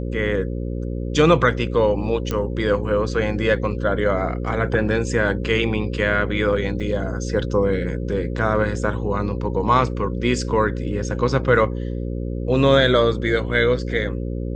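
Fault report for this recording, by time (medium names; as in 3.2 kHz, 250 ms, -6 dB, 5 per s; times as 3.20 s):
buzz 60 Hz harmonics 9 -26 dBFS
2.31 s: pop -10 dBFS
6.80–6.81 s: dropout 5.4 ms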